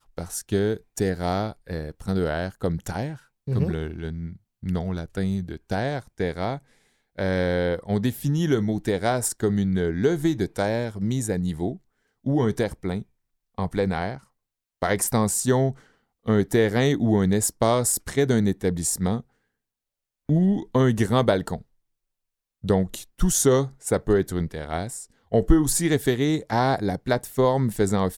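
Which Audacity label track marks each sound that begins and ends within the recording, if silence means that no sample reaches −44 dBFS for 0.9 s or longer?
20.290000	21.620000	sound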